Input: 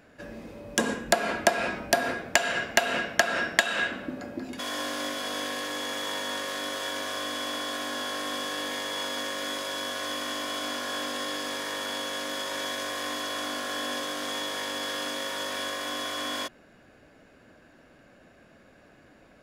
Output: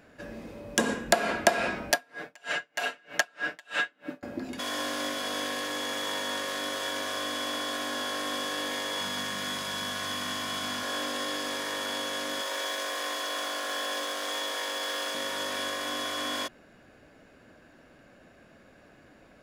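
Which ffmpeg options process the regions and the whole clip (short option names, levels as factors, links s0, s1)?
-filter_complex "[0:a]asettb=1/sr,asplit=3[s0][s1][s2];[s0]atrim=end=1.914[s3];[s1]atrim=start=1.91:end=4.23,asetpts=PTS-STARTPTS,afade=t=in:d=0.004:c=qsin,afade=t=out:st=2.316:d=0.004:c=qsin,highpass=f=360:p=1,aecho=1:1:6.7:0.69,atrim=end_sample=102312,aeval=exprs='val(0)*pow(10,-35*(0.5-0.5*cos(2*PI*3.2*n/s))/20)':c=same[s4];[s2]atrim=start=4.226[s5];[s3][s4]acrossfade=d=0.004:c1=hsin:c2=qsin[s6];[s6][s5]acrossfade=d=0.004:c1=qsin:c2=hsin,asettb=1/sr,asplit=3[s7][s8][s9];[s7]atrim=end=9.004[s10];[s8]atrim=start=9:end=10.83,asetpts=PTS-STARTPTS,afade=t=in:d=0.004:c=qsin,afade=t=out:st=1.826:d=0.004:c=qsin,lowshelf=f=240:t=q:w=3:g=7,bandreject=f=570:w=6.5[s11];[s9]atrim=start=10.826[s12];[s10][s11]acrossfade=d=0.004:c1=hsin:c2=qsin[s13];[s13][s12]acrossfade=d=0.004:c1=qsin:c2=hsin,asettb=1/sr,asplit=3[s14][s15][s16];[s14]atrim=end=12.414[s17];[s15]atrim=start=12.41:end=15.15,asetpts=PTS-STARTPTS,afade=t=in:d=0.004:c=qsin,afade=t=out:st=2.736:d=0.004:c=qsin,highpass=f=290:w=0.5412,highpass=f=290:w=1.3066,bandreject=f=50:t=h:w=6,bandreject=f=100:t=h:w=6,bandreject=f=150:t=h:w=6,bandreject=f=200:t=h:w=6,bandreject=f=250:t=h:w=6,bandreject=f=300:t=h:w=6,bandreject=f=350:t=h:w=6,bandreject=f=400:t=h:w=6,bandreject=f=450:t=h:w=6,acrusher=bits=6:mode=log:mix=0:aa=0.000001[s18];[s16]atrim=start=15.146[s19];[s17][s18]acrossfade=d=0.004:c1=hsin:c2=qsin[s20];[s20][s19]acrossfade=d=0.004:c1=qsin:c2=hsin"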